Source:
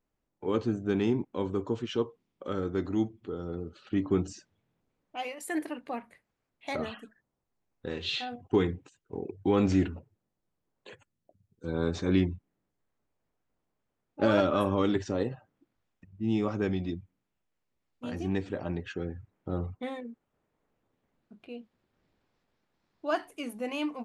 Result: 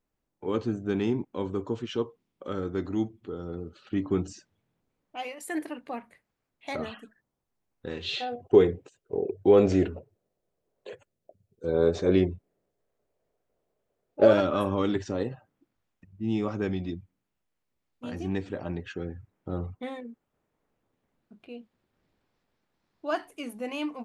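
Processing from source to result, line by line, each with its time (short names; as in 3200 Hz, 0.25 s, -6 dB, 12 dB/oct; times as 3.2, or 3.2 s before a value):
8.09–14.33 band shelf 510 Hz +10 dB 1.1 oct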